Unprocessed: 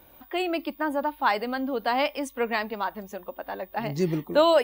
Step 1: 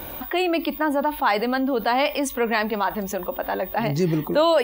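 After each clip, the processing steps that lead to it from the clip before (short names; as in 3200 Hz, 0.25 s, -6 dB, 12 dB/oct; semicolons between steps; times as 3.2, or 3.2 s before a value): fast leveller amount 50%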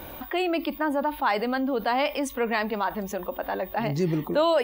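high shelf 5500 Hz -4.5 dB; gain -3.5 dB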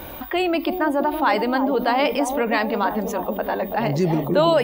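analogue delay 0.331 s, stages 2048, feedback 61%, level -6 dB; gain +4.5 dB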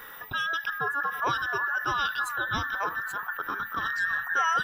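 band inversion scrambler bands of 2000 Hz; gain -8.5 dB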